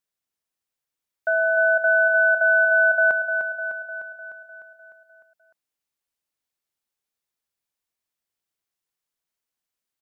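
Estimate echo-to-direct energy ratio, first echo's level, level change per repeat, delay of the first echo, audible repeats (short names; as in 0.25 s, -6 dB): -5.5 dB, -7.5 dB, -4.5 dB, 0.302 s, 7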